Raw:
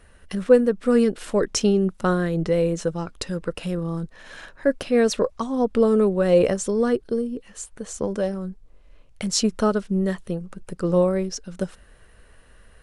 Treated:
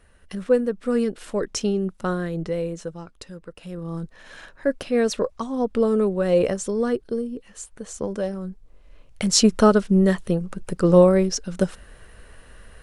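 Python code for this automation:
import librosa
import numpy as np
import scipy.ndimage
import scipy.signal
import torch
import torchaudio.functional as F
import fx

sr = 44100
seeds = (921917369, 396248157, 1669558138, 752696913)

y = fx.gain(x, sr, db=fx.line((2.35, -4.0), (3.54, -12.5), (3.96, -2.0), (8.29, -2.0), (9.48, 5.5)))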